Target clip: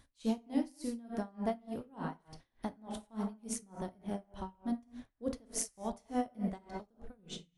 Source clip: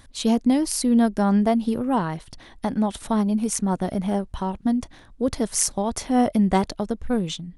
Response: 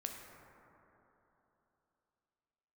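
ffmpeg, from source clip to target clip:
-filter_complex "[0:a]asettb=1/sr,asplit=3[s0][s1][s2];[s0]atrim=end=6.584[s3];[s1]atrim=start=6.58:end=7.19,asetpts=PTS-STARTPTS,afade=t=in:d=0.004:c=qsin,afade=t=out:st=0.606:d=0.004:c=qsin,acompressor=threshold=0.0316:ratio=4[s4];[s2]atrim=start=7.186[s5];[s3][s4]acrossfade=d=0.004:c1=hsin:c2=qsin[s6];[s6][s5]acrossfade=d=0.004:c1=qsin:c2=hsin[s7];[1:a]atrim=start_sample=2205,afade=t=out:st=0.33:d=0.01,atrim=end_sample=14994,asetrate=52920,aresample=44100[s8];[s7][s8]afir=irnorm=-1:irlink=0,aeval=exprs='val(0)*pow(10,-28*(0.5-0.5*cos(2*PI*3.4*n/s))/20)':c=same,volume=0.422"

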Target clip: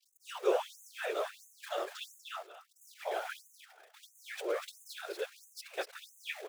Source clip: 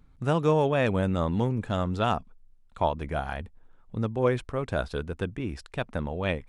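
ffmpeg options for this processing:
-af "aeval=exprs='val(0)+0.5*0.02*sgn(val(0))':c=same,equalizer=f=970:t=o:w=0.4:g=-10.5,afftfilt=real='hypot(re,im)*cos(2*PI*random(0))':imag='hypot(re,im)*sin(2*PI*random(1))':win_size=512:overlap=0.75,agate=range=0.0224:threshold=0.0112:ratio=3:detection=peak,aecho=1:1:242|484|726:0.562|0.0956|0.0163,afftfilt=real='re*gte(b*sr/1024,310*pow(6300/310,0.5+0.5*sin(2*PI*1.5*pts/sr)))':imag='im*gte(b*sr/1024,310*pow(6300/310,0.5+0.5*sin(2*PI*1.5*pts/sr)))':win_size=1024:overlap=0.75,volume=1.12"

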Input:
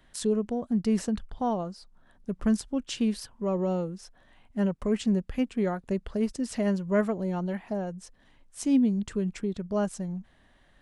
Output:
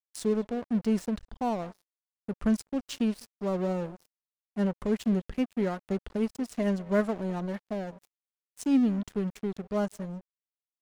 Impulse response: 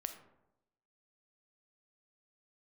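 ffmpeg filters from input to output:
-filter_complex "[0:a]asplit=2[s0][s1];[s1]adelay=200,highpass=300,lowpass=3400,asoftclip=type=hard:threshold=0.0668,volume=0.112[s2];[s0][s2]amix=inputs=2:normalize=0,aeval=exprs='sgn(val(0))*max(abs(val(0))-0.01,0)':c=same"

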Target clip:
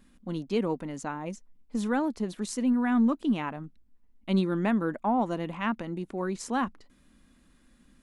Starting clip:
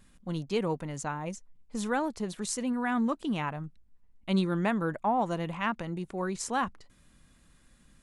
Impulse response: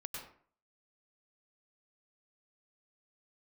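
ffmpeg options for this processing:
-af "equalizer=f=125:t=o:w=1:g=-8,equalizer=f=250:t=o:w=1:g=9,equalizer=f=8000:t=o:w=1:g=-4,aeval=exprs='0.2*(cos(1*acos(clip(val(0)/0.2,-1,1)))-cos(1*PI/2))+0.00794*(cos(2*acos(clip(val(0)/0.2,-1,1)))-cos(2*PI/2))':c=same,volume=0.891"

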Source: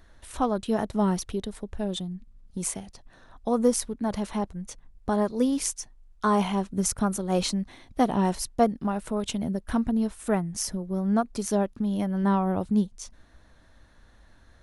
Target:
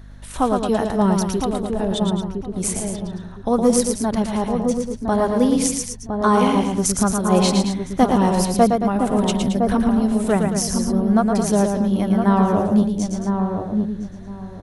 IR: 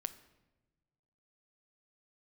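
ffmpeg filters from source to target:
-filter_complex "[0:a]asplit=2[s0][s1];[s1]aecho=0:1:113.7|221.6:0.562|0.316[s2];[s0][s2]amix=inputs=2:normalize=0,aeval=exprs='val(0)+0.00501*(sin(2*PI*50*n/s)+sin(2*PI*2*50*n/s)/2+sin(2*PI*3*50*n/s)/3+sin(2*PI*4*50*n/s)/4+sin(2*PI*5*50*n/s)/5)':c=same,asplit=2[s3][s4];[s4]adelay=1011,lowpass=f=820:p=1,volume=0.631,asplit=2[s5][s6];[s6]adelay=1011,lowpass=f=820:p=1,volume=0.24,asplit=2[s7][s8];[s8]adelay=1011,lowpass=f=820:p=1,volume=0.24[s9];[s5][s7][s9]amix=inputs=3:normalize=0[s10];[s3][s10]amix=inputs=2:normalize=0,volume=2"

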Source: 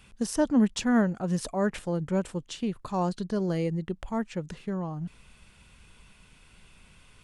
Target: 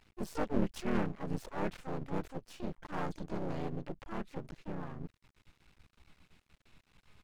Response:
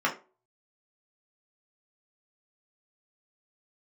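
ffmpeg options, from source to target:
-filter_complex "[0:a]aemphasis=mode=reproduction:type=50kf,asplit=3[s0][s1][s2];[s1]asetrate=37084,aresample=44100,atempo=1.18921,volume=0.891[s3];[s2]asetrate=66075,aresample=44100,atempo=0.66742,volume=0.708[s4];[s0][s3][s4]amix=inputs=3:normalize=0,aeval=exprs='max(val(0),0)':c=same,volume=0.376"

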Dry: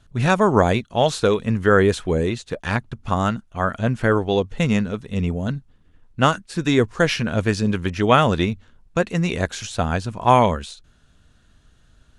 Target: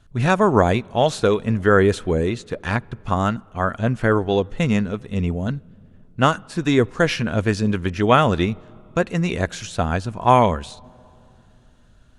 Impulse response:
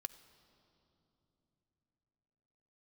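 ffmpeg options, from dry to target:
-filter_complex "[0:a]asplit=2[s0][s1];[1:a]atrim=start_sample=2205,lowpass=3000[s2];[s1][s2]afir=irnorm=-1:irlink=0,volume=0.398[s3];[s0][s3]amix=inputs=2:normalize=0,volume=0.841"

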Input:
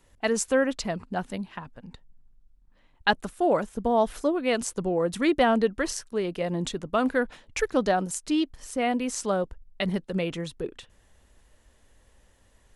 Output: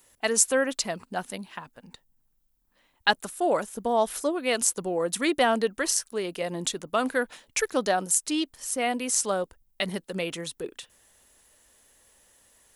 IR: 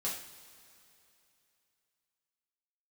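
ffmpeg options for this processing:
-af "aemphasis=mode=production:type=bsi"

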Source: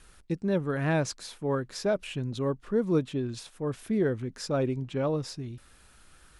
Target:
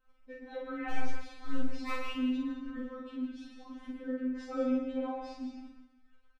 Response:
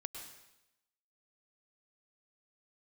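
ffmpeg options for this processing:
-filter_complex "[0:a]agate=range=0.112:threshold=0.00251:ratio=16:detection=peak,lowpass=2500,asettb=1/sr,asplit=3[s0][s1][s2];[s0]atrim=end=0.904[s3];[s1]atrim=start=0.9:end=1.76,asetpts=PTS-STARTPTS,afade=t=in:d=0.004:c=qsin,afade=t=out:st=0.856:d=0.004:c=qsin,aeval=exprs='clip(val(0),-1,0.0112)':c=same[s4];[s2]atrim=start=1.756[s5];[s3][s4]acrossfade=d=0.004:c1=hsin:c2=qsin[s6];[s6][s5]acrossfade=d=0.004:c1=qsin:c2=hsin,asettb=1/sr,asplit=3[s7][s8][s9];[s7]atrim=end=2.834[s10];[s8]atrim=start=2.83:end=4.42,asetpts=PTS-STARTPTS,afade=t=in:d=0.004:c=qsin,afade=t=out:st=1.586:d=0.004:c=qsin,acompressor=threshold=0.0316:ratio=6[s11];[s9]atrim=start=4.416[s12];[s10][s11]acrossfade=d=0.004:c1=hsin:c2=qsin[s13];[s13][s12]acrossfade=d=0.004:c1=qsin:c2=hsin,aphaser=in_gain=1:out_gain=1:delay=1.8:decay=0.43:speed=0.52:type=triangular,aeval=exprs='0.15*(abs(mod(val(0)/0.15+3,4)-2)-1)':c=same,asplit=2[s14][s15];[s15]adelay=47,volume=0.75[s16];[s14][s16]amix=inputs=2:normalize=0[s17];[1:a]atrim=start_sample=2205[s18];[s17][s18]afir=irnorm=-1:irlink=0,afftfilt=real='re*3.46*eq(mod(b,12),0)':imag='im*3.46*eq(mod(b,12),0)':win_size=2048:overlap=0.75"

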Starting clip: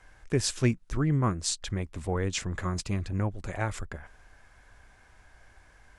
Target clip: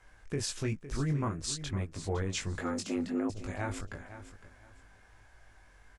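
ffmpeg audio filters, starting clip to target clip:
-filter_complex "[0:a]flanger=delay=19:depth=2.4:speed=1.5,asettb=1/sr,asplit=3[s0][s1][s2];[s0]atrim=end=2.614[s3];[s1]atrim=start=2.61:end=3.3,asetpts=PTS-STARTPTS,afade=t=in:d=0.004:c=qsin,afade=t=out:st=0.686:d=0.004:c=qsin,afreqshift=160[s4];[s2]atrim=start=3.296[s5];[s3][s4]acrossfade=d=0.004:c1=hsin:c2=qsin[s6];[s6][s5]acrossfade=d=0.004:c1=qsin:c2=hsin,alimiter=limit=0.0668:level=0:latency=1:release=60,asplit=2[s7][s8];[s8]aecho=0:1:509|1018|1527:0.224|0.0537|0.0129[s9];[s7][s9]amix=inputs=2:normalize=0"

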